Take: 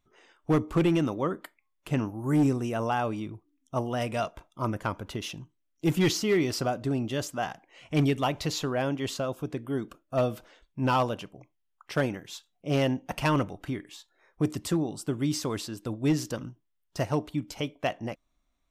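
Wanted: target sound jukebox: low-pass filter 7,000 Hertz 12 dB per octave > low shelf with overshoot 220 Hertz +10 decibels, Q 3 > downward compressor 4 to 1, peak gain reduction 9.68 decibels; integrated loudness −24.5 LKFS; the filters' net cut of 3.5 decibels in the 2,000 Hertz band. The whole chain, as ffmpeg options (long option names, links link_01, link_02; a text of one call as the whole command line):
ffmpeg -i in.wav -af "lowpass=7000,lowshelf=frequency=220:width_type=q:width=3:gain=10,equalizer=frequency=2000:width_type=o:gain=-4.5,acompressor=threshold=-18dB:ratio=4,volume=0.5dB" out.wav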